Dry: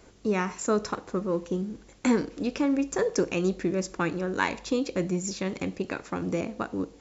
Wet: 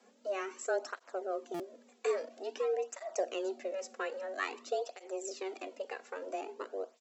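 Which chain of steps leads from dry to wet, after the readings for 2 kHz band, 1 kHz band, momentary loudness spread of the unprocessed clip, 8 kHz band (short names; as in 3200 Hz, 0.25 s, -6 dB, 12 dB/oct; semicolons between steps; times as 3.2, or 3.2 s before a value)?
-8.5 dB, -7.0 dB, 6 LU, n/a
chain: frequency shift +190 Hz; stuck buffer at 1.54, samples 256, times 9; tape flanging out of phase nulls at 0.5 Hz, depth 3.4 ms; gain -7 dB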